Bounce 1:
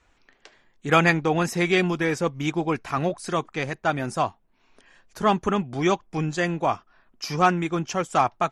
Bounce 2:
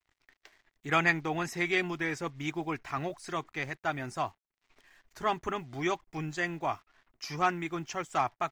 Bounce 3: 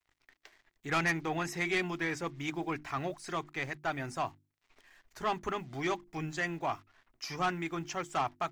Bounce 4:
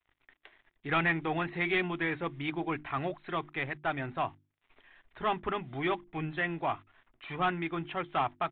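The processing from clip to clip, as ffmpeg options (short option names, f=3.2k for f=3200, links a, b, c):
-af "acrusher=bits=8:mix=0:aa=0.5,equalizer=f=200:t=o:w=0.33:g=-12,equalizer=f=500:t=o:w=0.33:g=-7,equalizer=f=2k:t=o:w=0.33:g=6,equalizer=f=10k:t=o:w=0.33:g=-6,volume=-8dB"
-af "bandreject=f=50:t=h:w=6,bandreject=f=100:t=h:w=6,bandreject=f=150:t=h:w=6,bandreject=f=200:t=h:w=6,bandreject=f=250:t=h:w=6,bandreject=f=300:t=h:w=6,bandreject=f=350:t=h:w=6,asoftclip=type=tanh:threshold=-23.5dB"
-af "aresample=8000,aresample=44100,volume=2dB"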